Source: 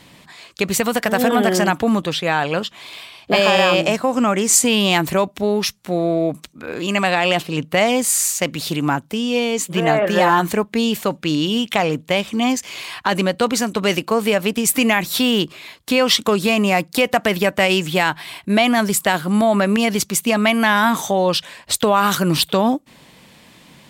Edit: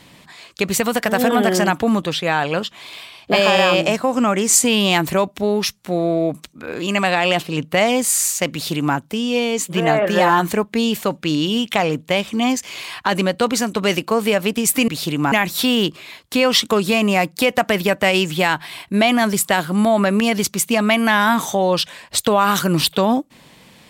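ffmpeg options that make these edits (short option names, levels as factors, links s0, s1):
-filter_complex "[0:a]asplit=3[s0][s1][s2];[s0]atrim=end=14.882[s3];[s1]atrim=start=8.518:end=8.962[s4];[s2]atrim=start=14.878[s5];[s3][s4]acrossfade=d=0.004:c1=hsin:c2=hsin[s6];[s6][s5]acrossfade=d=0.004:c1=hsin:c2=hsin"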